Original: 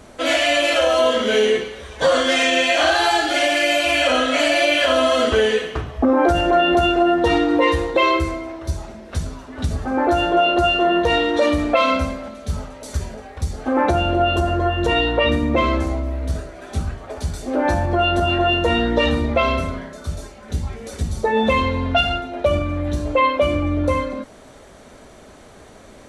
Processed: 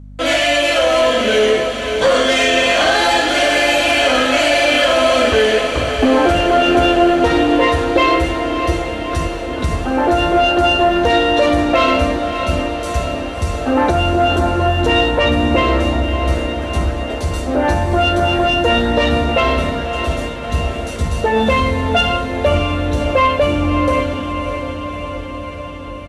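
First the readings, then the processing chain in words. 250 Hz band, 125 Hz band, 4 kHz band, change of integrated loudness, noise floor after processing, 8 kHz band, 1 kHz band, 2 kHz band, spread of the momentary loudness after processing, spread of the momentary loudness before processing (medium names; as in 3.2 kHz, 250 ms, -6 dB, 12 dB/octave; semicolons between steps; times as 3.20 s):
+4.0 dB, +4.5 dB, +4.0 dB, +3.5 dB, -25 dBFS, +4.5 dB, +4.0 dB, +4.0 dB, 9 LU, 13 LU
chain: gate with hold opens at -31 dBFS; waveshaping leveller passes 1; resampled via 32 kHz; hum 50 Hz, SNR 19 dB; echo that smears into a reverb 610 ms, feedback 69%, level -8 dB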